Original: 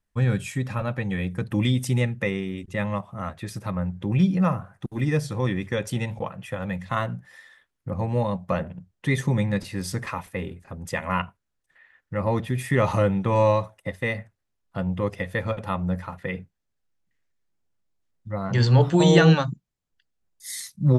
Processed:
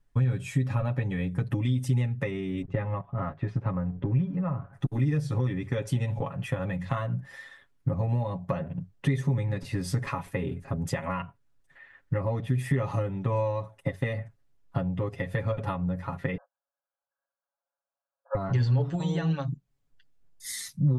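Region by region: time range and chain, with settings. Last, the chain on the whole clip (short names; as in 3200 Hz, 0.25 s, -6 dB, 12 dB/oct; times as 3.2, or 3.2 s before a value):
2.62–4.73 G.711 law mismatch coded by A + LPF 2000 Hz
16.37–18.35 sample leveller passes 2 + compressor 1.5:1, threshold -33 dBFS + brick-wall FIR band-pass 500–1700 Hz
whole clip: compressor 12:1, threshold -32 dBFS; tilt -1.5 dB/oct; comb 7.2 ms, depth 76%; gain +2.5 dB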